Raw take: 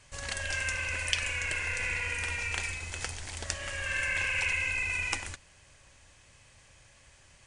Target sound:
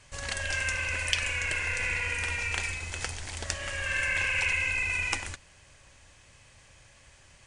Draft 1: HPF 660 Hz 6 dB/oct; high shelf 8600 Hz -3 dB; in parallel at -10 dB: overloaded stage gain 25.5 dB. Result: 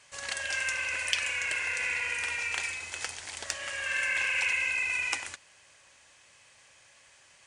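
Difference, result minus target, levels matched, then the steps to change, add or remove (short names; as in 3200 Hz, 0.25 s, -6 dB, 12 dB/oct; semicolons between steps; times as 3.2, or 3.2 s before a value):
overloaded stage: distortion +10 dB; 500 Hz band -3.5 dB
change: overloaded stage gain 15 dB; remove: HPF 660 Hz 6 dB/oct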